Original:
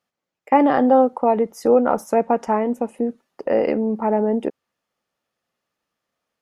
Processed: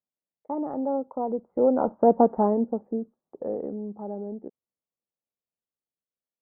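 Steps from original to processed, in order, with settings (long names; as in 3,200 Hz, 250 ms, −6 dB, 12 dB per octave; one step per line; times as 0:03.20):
source passing by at 0:02.20, 17 m/s, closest 4.8 metres
Gaussian smoothing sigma 9.2 samples
level +3 dB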